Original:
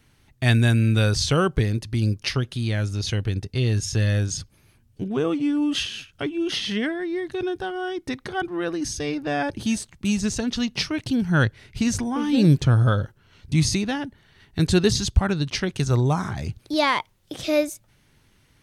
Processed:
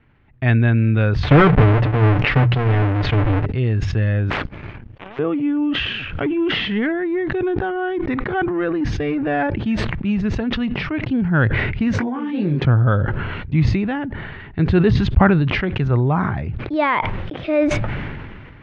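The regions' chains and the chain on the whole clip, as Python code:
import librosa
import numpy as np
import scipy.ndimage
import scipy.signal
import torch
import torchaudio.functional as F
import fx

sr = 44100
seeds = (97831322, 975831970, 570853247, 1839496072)

y = fx.chain(x, sr, fx.halfwave_hold(),
    fx.hum_notches(base_hz=60, count=3),
    fx.comb(ms=6.8, depth=0.42), at=(1.23, 3.46))
y = fx.chain(y, sr, fx.high_shelf(hz=10000.0, db=8.5),
    fx.power_curve(exponent=2.0),
    fx.spectral_comp(ratio=10.0), at=(4.3, 5.19))
y = fx.chain(y, sr, fx.leveller(passes=1),
    fx.pre_swell(db_per_s=68.0), at=(5.94, 9.47))
y = fx.chain(y, sr, fx.highpass(hz=200.0, slope=12),
    fx.high_shelf(hz=5400.0, db=7.0),
    fx.detune_double(cents=37), at=(11.93, 12.65))
y = scipy.signal.sosfilt(scipy.signal.butter(4, 2400.0, 'lowpass', fs=sr, output='sos'), y)
y = fx.sustainer(y, sr, db_per_s=29.0)
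y = y * 10.0 ** (2.5 / 20.0)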